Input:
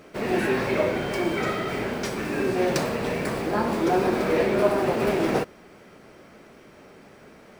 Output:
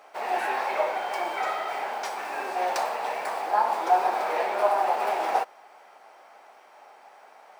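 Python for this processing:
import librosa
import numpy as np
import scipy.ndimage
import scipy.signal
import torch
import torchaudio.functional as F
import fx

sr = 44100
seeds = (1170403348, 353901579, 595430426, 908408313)

y = fx.highpass_res(x, sr, hz=800.0, q=4.9)
y = y * librosa.db_to_amplitude(-4.5)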